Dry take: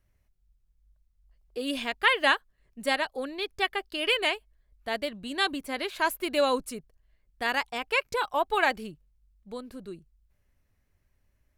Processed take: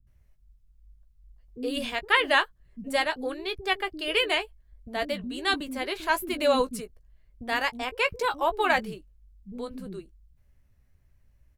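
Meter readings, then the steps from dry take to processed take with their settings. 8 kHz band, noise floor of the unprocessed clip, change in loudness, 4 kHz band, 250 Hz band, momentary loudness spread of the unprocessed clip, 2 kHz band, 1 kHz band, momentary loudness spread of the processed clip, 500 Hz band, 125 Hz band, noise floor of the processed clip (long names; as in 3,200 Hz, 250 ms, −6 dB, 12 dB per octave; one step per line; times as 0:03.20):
+0.5 dB, −71 dBFS, +1.0 dB, +0.5 dB, +2.0 dB, 17 LU, +0.5 dB, +1.0 dB, 17 LU, +2.0 dB, can't be measured, −63 dBFS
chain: low-shelf EQ 290 Hz +9 dB
double-tracking delay 16 ms −10 dB
multiband delay without the direct sound lows, highs 70 ms, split 300 Hz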